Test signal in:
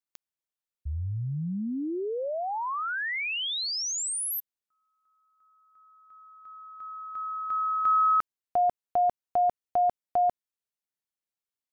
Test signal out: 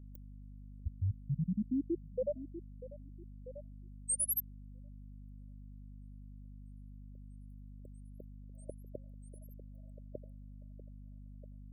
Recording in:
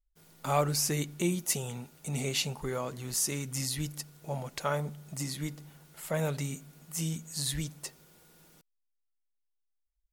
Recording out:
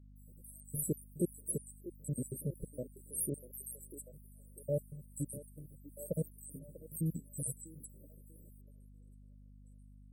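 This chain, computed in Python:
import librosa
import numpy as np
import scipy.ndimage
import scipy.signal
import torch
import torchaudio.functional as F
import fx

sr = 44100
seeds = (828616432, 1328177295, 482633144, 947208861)

y = fx.spec_dropout(x, sr, seeds[0], share_pct=66)
y = fx.add_hum(y, sr, base_hz=50, snr_db=16)
y = fx.brickwall_bandstop(y, sr, low_hz=620.0, high_hz=7700.0)
y = fx.echo_stepped(y, sr, ms=642, hz=360.0, octaves=0.7, feedback_pct=70, wet_db=-11.5)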